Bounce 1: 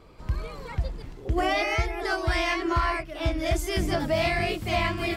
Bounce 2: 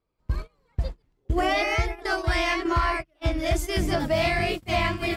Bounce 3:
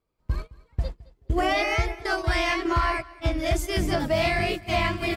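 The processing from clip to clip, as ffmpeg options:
ffmpeg -i in.wav -af "agate=range=-30dB:threshold=-29dB:ratio=16:detection=peak,acontrast=84,volume=-5.5dB" out.wav
ffmpeg -i in.wav -af "aecho=1:1:215|430:0.0841|0.0219" out.wav

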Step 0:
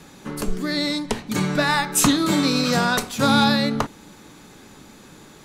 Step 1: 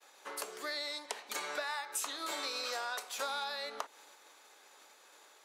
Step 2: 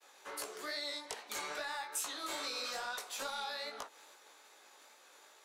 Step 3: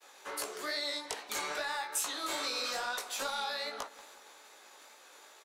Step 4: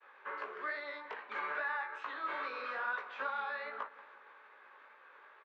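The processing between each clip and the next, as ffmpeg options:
ffmpeg -i in.wav -af "agate=range=-33dB:threshold=-40dB:ratio=3:detection=peak,highpass=frequency=520:width=0.5412,highpass=frequency=520:width=1.3066,acompressor=threshold=-30dB:ratio=6,volume=-5.5dB" out.wav
ffmpeg -i in.wav -filter_complex "[0:a]acrossover=split=250|4300[link_01][link_02][link_03];[link_02]asoftclip=type=tanh:threshold=-34.5dB[link_04];[link_01][link_04][link_03]amix=inputs=3:normalize=0,flanger=delay=16.5:depth=4.8:speed=2.4,volume=2.5dB" out.wav
ffmpeg -i in.wav -filter_complex "[0:a]asplit=2[link_01][link_02];[link_02]adelay=184,lowpass=frequency=2000:poles=1,volume=-17dB,asplit=2[link_03][link_04];[link_04]adelay=184,lowpass=frequency=2000:poles=1,volume=0.54,asplit=2[link_05][link_06];[link_06]adelay=184,lowpass=frequency=2000:poles=1,volume=0.54,asplit=2[link_07][link_08];[link_08]adelay=184,lowpass=frequency=2000:poles=1,volume=0.54,asplit=2[link_09][link_10];[link_10]adelay=184,lowpass=frequency=2000:poles=1,volume=0.54[link_11];[link_01][link_03][link_05][link_07][link_09][link_11]amix=inputs=6:normalize=0,volume=4.5dB" out.wav
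ffmpeg -i in.wav -af "highpass=250,equalizer=frequency=310:width_type=q:width=4:gain=-7,equalizer=frequency=710:width_type=q:width=4:gain=-7,equalizer=frequency=1100:width_type=q:width=4:gain=6,equalizer=frequency=1600:width_type=q:width=4:gain=6,lowpass=frequency=2400:width=0.5412,lowpass=frequency=2400:width=1.3066,volume=-2.5dB" out.wav

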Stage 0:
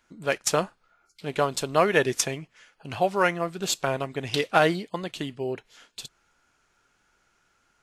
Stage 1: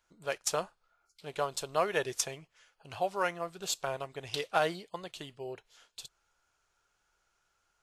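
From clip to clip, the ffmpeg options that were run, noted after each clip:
ffmpeg -i in.wav -af "equalizer=frequency=125:width_type=o:width=1:gain=-4,equalizer=frequency=250:width_type=o:width=1:gain=-12,equalizer=frequency=2000:width_type=o:width=1:gain=-5,volume=-6dB" out.wav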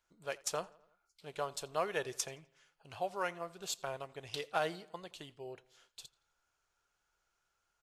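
ffmpeg -i in.wav -filter_complex "[0:a]asplit=2[link_01][link_02];[link_02]adelay=84,lowpass=frequency=4200:poles=1,volume=-22dB,asplit=2[link_03][link_04];[link_04]adelay=84,lowpass=frequency=4200:poles=1,volume=0.55,asplit=2[link_05][link_06];[link_06]adelay=84,lowpass=frequency=4200:poles=1,volume=0.55,asplit=2[link_07][link_08];[link_08]adelay=84,lowpass=frequency=4200:poles=1,volume=0.55[link_09];[link_01][link_03][link_05][link_07][link_09]amix=inputs=5:normalize=0,volume=-5.5dB" out.wav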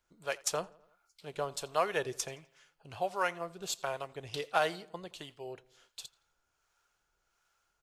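ffmpeg -i in.wav -filter_complex "[0:a]acrossover=split=520[link_01][link_02];[link_01]aeval=exprs='val(0)*(1-0.5/2+0.5/2*cos(2*PI*1.4*n/s))':channel_layout=same[link_03];[link_02]aeval=exprs='val(0)*(1-0.5/2-0.5/2*cos(2*PI*1.4*n/s))':channel_layout=same[link_04];[link_03][link_04]amix=inputs=2:normalize=0,volume=6dB" out.wav

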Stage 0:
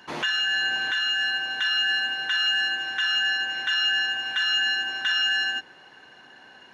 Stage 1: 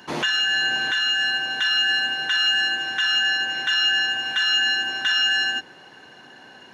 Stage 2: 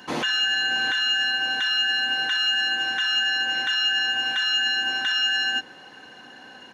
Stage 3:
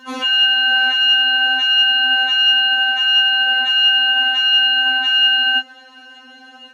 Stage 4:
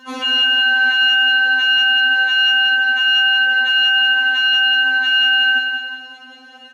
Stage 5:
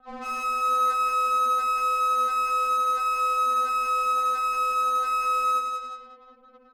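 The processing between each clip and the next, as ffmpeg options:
ffmpeg -i in.wav -af "highpass=71,equalizer=frequency=1700:width=0.39:gain=-5.5,volume=8dB" out.wav
ffmpeg -i in.wav -af "aecho=1:1:3.9:0.3,alimiter=limit=-15.5dB:level=0:latency=1:release=65" out.wav
ffmpeg -i in.wav -af "afftfilt=real='re*3.46*eq(mod(b,12),0)':imag='im*3.46*eq(mod(b,12),0)':win_size=2048:overlap=0.75,volume=1.5dB" out.wav
ffmpeg -i in.wav -af "aecho=1:1:183|366|549|732|915|1098:0.531|0.25|0.117|0.0551|0.0259|0.0122,volume=-1dB" out.wav
ffmpeg -i in.wav -af "highpass=frequency=370:width_type=q:width=0.5412,highpass=frequency=370:width_type=q:width=1.307,lowpass=frequency=2200:width_type=q:width=0.5176,lowpass=frequency=2200:width_type=q:width=0.7071,lowpass=frequency=2200:width_type=q:width=1.932,afreqshift=-270,adynamicsmooth=sensitivity=5.5:basefreq=720,volume=-7.5dB" out.wav

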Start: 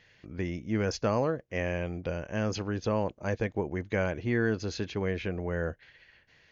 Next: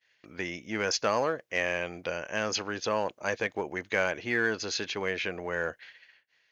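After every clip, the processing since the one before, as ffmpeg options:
ffmpeg -i in.wav -filter_complex "[0:a]asplit=2[link_01][link_02];[link_02]asoftclip=type=hard:threshold=-25.5dB,volume=-11.5dB[link_03];[link_01][link_03]amix=inputs=2:normalize=0,agate=range=-33dB:threshold=-49dB:ratio=3:detection=peak,highpass=frequency=1300:poles=1,volume=7dB" out.wav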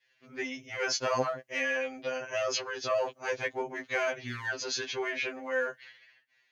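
ffmpeg -i in.wav -af "afftfilt=real='re*2.45*eq(mod(b,6),0)':imag='im*2.45*eq(mod(b,6),0)':win_size=2048:overlap=0.75,volume=1dB" out.wav

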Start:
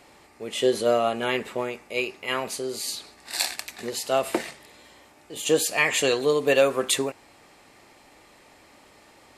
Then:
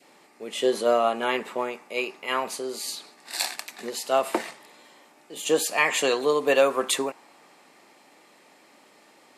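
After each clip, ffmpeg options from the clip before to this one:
ffmpeg -i in.wav -af "highpass=frequency=170:width=0.5412,highpass=frequency=170:width=1.3066,adynamicequalizer=threshold=0.0112:dfrequency=1000:dqfactor=1.4:tfrequency=1000:tqfactor=1.4:attack=5:release=100:ratio=0.375:range=3.5:mode=boostabove:tftype=bell,volume=-2dB" out.wav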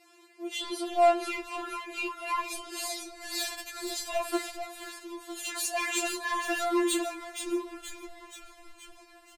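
ffmpeg -i in.wav -filter_complex "[0:a]asoftclip=type=tanh:threshold=-22dB,asplit=8[link_01][link_02][link_03][link_04][link_05][link_06][link_07][link_08];[link_02]adelay=476,afreqshift=-96,volume=-7dB[link_09];[link_03]adelay=952,afreqshift=-192,volume=-12dB[link_10];[link_04]adelay=1428,afreqshift=-288,volume=-17.1dB[link_11];[link_05]adelay=1904,afreqshift=-384,volume=-22.1dB[link_12];[link_06]adelay=2380,afreqshift=-480,volume=-27.1dB[link_13];[link_07]adelay=2856,afreqshift=-576,volume=-32.2dB[link_14];[link_08]adelay=3332,afreqshift=-672,volume=-37.2dB[link_15];[link_01][link_09][link_10][link_11][link_12][link_13][link_14][link_15]amix=inputs=8:normalize=0,afftfilt=real='re*4*eq(mod(b,16),0)':imag='im*4*eq(mod(b,16),0)':win_size=2048:overlap=0.75" out.wav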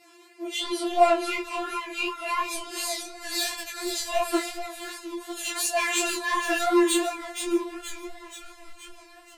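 ffmpeg -i in.wav -af "flanger=delay=19.5:depth=3.5:speed=2.8,volume=8dB" out.wav

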